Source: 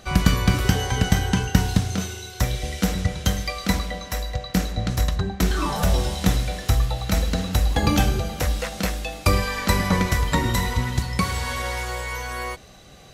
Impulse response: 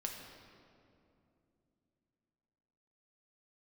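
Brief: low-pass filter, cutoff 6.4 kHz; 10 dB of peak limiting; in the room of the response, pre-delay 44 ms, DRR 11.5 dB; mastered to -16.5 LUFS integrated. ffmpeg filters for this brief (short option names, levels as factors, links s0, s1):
-filter_complex "[0:a]lowpass=6400,alimiter=limit=0.251:level=0:latency=1,asplit=2[s0][s1];[1:a]atrim=start_sample=2205,adelay=44[s2];[s1][s2]afir=irnorm=-1:irlink=0,volume=0.282[s3];[s0][s3]amix=inputs=2:normalize=0,volume=2.66"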